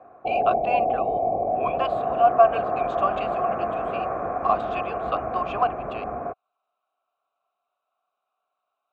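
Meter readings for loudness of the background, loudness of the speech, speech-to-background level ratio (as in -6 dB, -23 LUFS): -26.5 LUFS, -26.5 LUFS, 0.0 dB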